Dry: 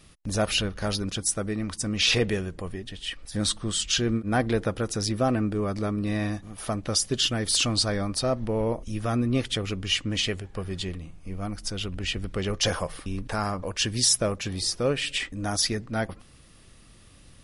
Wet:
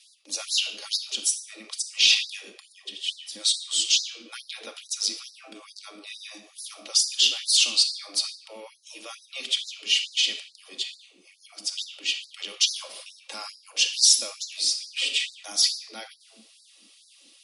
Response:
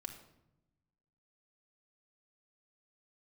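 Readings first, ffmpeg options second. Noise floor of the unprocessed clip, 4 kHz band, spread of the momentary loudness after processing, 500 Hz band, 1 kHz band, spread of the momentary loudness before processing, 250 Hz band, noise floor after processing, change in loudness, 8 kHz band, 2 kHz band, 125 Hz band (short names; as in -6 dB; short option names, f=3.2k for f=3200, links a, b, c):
-52 dBFS, +5.5 dB, 22 LU, -19.0 dB, -14.0 dB, 11 LU, -24.0 dB, -57 dBFS, +3.5 dB, +3.5 dB, 0.0 dB, under -40 dB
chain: -filter_complex "[1:a]atrim=start_sample=2205,asetrate=42777,aresample=44100[a];[0:a][a]afir=irnorm=-1:irlink=0,acrossover=split=360[b][c];[b]acompressor=threshold=-43dB:ratio=5[d];[c]aexciter=amount=14.3:drive=3.3:freq=2.5k[e];[d][e]amix=inputs=2:normalize=0,acrossover=split=310|680[f][g][h];[f]acompressor=threshold=-50dB:ratio=4[i];[g]acompressor=threshold=-48dB:ratio=4[j];[i][j][h]amix=inputs=3:normalize=0,aemphasis=mode=reproduction:type=riaa,afftfilt=real='re*gte(b*sr/1024,200*pow(3900/200,0.5+0.5*sin(2*PI*2.3*pts/sr)))':imag='im*gte(b*sr/1024,200*pow(3900/200,0.5+0.5*sin(2*PI*2.3*pts/sr)))':win_size=1024:overlap=0.75,volume=-5.5dB"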